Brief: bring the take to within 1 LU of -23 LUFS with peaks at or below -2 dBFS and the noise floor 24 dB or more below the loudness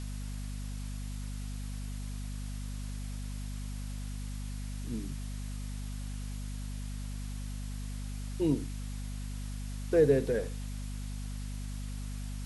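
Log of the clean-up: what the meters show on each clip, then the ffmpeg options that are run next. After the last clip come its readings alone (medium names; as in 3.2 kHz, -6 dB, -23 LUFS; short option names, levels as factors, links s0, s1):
hum 50 Hz; highest harmonic 250 Hz; hum level -36 dBFS; noise floor -38 dBFS; noise floor target -61 dBFS; loudness -37.0 LUFS; peak level -13.5 dBFS; loudness target -23.0 LUFS
-> -af "bandreject=f=50:t=h:w=6,bandreject=f=100:t=h:w=6,bandreject=f=150:t=h:w=6,bandreject=f=200:t=h:w=6,bandreject=f=250:t=h:w=6"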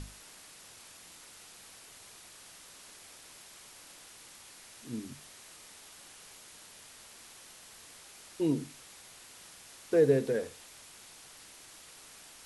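hum not found; noise floor -53 dBFS; noise floor target -55 dBFS
-> -af "afftdn=nr=6:nf=-53"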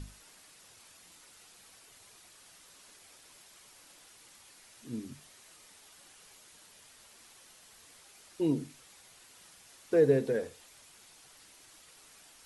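noise floor -58 dBFS; loudness -31.0 LUFS; peak level -13.5 dBFS; loudness target -23.0 LUFS
-> -af "volume=2.51"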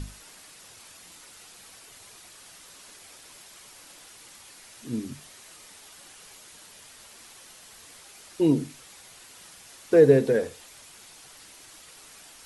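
loudness -23.0 LUFS; peak level -5.5 dBFS; noise floor -50 dBFS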